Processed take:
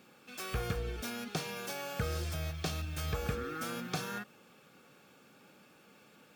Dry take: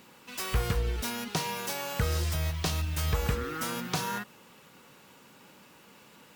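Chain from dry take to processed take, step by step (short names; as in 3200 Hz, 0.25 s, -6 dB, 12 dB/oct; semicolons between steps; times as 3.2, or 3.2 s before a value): high shelf 5100 Hz -4.5 dB; notch comb 980 Hz; gain -3.5 dB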